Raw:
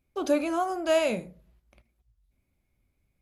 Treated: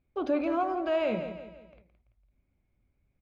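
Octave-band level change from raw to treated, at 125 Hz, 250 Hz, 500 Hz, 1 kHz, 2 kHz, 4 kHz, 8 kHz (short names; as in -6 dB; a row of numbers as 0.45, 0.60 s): 0.0 dB, -1.0 dB, -3.0 dB, -1.0 dB, -5.0 dB, -8.5 dB, under -25 dB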